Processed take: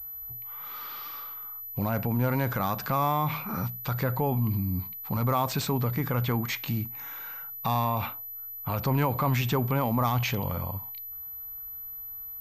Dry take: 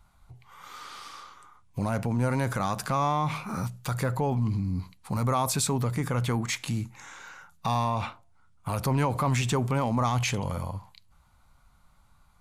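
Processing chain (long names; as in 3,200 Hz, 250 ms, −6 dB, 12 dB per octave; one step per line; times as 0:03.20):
switching amplifier with a slow clock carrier 12,000 Hz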